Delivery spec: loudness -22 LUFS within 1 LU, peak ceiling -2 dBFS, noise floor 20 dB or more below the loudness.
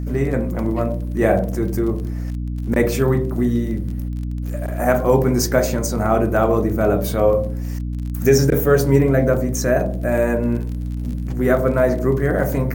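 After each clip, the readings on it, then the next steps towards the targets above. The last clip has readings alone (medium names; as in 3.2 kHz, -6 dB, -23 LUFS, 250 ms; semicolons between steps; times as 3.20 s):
tick rate 21 per s; hum 60 Hz; highest harmonic 300 Hz; hum level -22 dBFS; loudness -19.5 LUFS; peak level -1.5 dBFS; loudness target -22.0 LUFS
-> de-click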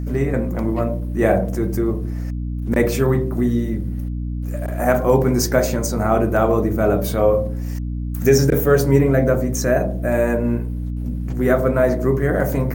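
tick rate 0.39 per s; hum 60 Hz; highest harmonic 300 Hz; hum level -22 dBFS
-> hum notches 60/120/180/240/300 Hz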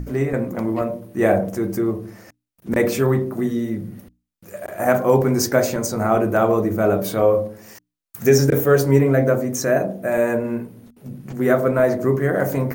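hum not found; loudness -19.5 LUFS; peak level -2.0 dBFS; loudness target -22.0 LUFS
-> trim -2.5 dB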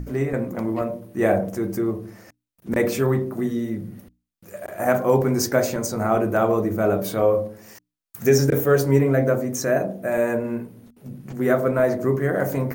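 loudness -22.0 LUFS; peak level -4.5 dBFS; noise floor -80 dBFS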